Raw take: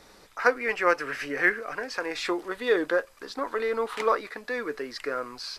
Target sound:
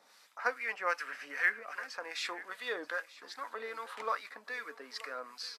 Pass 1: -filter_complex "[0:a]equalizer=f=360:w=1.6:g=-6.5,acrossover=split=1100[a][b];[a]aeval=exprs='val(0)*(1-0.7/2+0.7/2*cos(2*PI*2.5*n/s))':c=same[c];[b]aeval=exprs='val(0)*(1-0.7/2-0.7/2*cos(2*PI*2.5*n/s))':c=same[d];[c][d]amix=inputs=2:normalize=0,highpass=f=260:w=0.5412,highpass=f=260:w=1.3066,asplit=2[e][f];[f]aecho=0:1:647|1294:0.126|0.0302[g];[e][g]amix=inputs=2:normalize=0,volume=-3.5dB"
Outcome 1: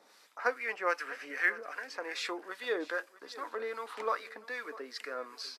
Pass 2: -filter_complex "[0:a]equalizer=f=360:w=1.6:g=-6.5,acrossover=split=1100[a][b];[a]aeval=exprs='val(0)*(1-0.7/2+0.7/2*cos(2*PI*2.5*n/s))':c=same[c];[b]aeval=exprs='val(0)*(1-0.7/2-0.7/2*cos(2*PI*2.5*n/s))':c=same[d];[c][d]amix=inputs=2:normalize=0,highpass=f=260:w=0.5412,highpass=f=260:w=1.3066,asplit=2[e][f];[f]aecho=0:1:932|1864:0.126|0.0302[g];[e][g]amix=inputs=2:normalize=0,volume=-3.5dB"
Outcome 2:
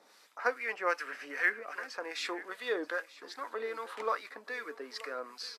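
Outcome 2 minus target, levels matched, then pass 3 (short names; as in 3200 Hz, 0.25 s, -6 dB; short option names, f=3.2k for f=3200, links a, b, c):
500 Hz band +4.0 dB
-filter_complex "[0:a]equalizer=f=360:w=1.6:g=-16.5,acrossover=split=1100[a][b];[a]aeval=exprs='val(0)*(1-0.7/2+0.7/2*cos(2*PI*2.5*n/s))':c=same[c];[b]aeval=exprs='val(0)*(1-0.7/2-0.7/2*cos(2*PI*2.5*n/s))':c=same[d];[c][d]amix=inputs=2:normalize=0,highpass=f=260:w=0.5412,highpass=f=260:w=1.3066,asplit=2[e][f];[f]aecho=0:1:932|1864:0.126|0.0302[g];[e][g]amix=inputs=2:normalize=0,volume=-3.5dB"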